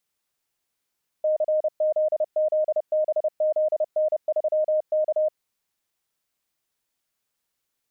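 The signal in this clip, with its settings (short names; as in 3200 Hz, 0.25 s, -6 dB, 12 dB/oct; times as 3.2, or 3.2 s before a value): Morse "CZZBZN3K" 30 wpm 618 Hz -18.5 dBFS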